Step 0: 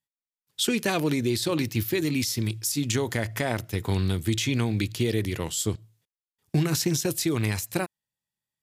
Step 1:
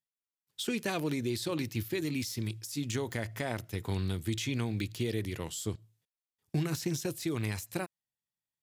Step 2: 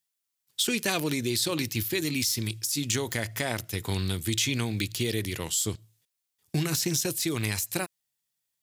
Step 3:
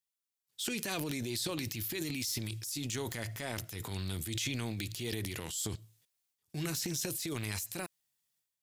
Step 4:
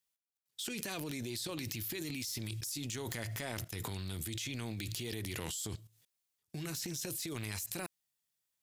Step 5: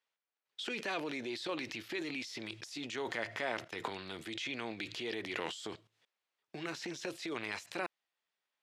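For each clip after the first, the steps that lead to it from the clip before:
de-essing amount 50%; level −7.5 dB
high-shelf EQ 2,400 Hz +10.5 dB; level +3 dB
transient designer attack −6 dB, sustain +9 dB; level −8.5 dB
output level in coarse steps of 15 dB; level +5 dB
band-pass filter 400–2,700 Hz; level +7 dB

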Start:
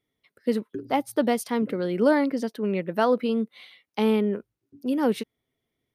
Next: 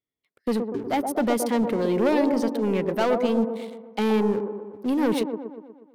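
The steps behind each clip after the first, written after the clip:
leveller curve on the samples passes 3
delay with a band-pass on its return 121 ms, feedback 56%, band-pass 490 Hz, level −4 dB
level −7.5 dB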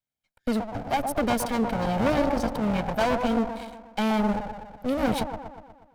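lower of the sound and its delayed copy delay 1.3 ms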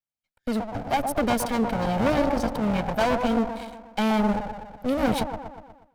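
automatic gain control gain up to 10.5 dB
level −8.5 dB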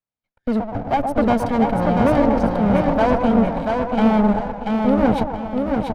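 low-pass filter 1,100 Hz 6 dB per octave
repeating echo 686 ms, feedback 33%, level −4 dB
level +6.5 dB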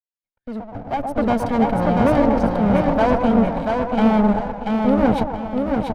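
fade in at the beginning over 1.58 s

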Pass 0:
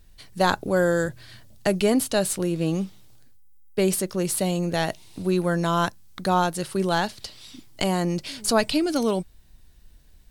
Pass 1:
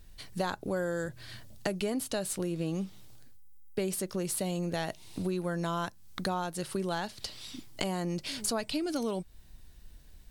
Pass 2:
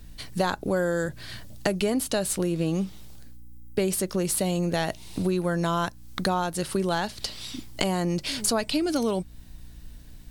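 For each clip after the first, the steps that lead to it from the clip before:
downward compressor 4 to 1, threshold −31 dBFS, peak gain reduction 14 dB
mains hum 60 Hz, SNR 23 dB; level +7 dB

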